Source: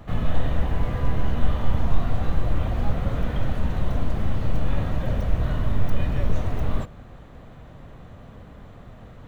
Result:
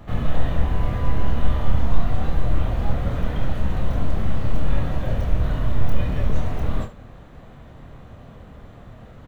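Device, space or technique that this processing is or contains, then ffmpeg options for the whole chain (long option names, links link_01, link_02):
slapback doubling: -filter_complex "[0:a]asplit=3[link_01][link_02][link_03];[link_02]adelay=27,volume=-6dB[link_04];[link_03]adelay=73,volume=-12dB[link_05];[link_01][link_04][link_05]amix=inputs=3:normalize=0"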